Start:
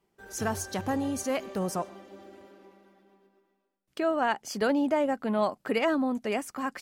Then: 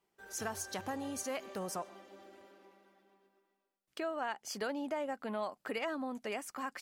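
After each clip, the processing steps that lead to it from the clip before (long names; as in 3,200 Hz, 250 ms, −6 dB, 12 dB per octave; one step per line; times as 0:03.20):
low-shelf EQ 360 Hz −10 dB
downward compressor 2.5 to 1, threshold −33 dBFS, peak gain reduction 7 dB
level −3 dB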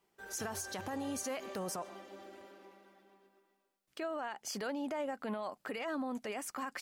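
brickwall limiter −34.5 dBFS, peak gain reduction 9.5 dB
level +4 dB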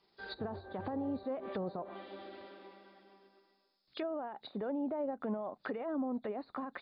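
hearing-aid frequency compression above 3,300 Hz 4 to 1
treble cut that deepens with the level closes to 720 Hz, closed at −36 dBFS
level +3 dB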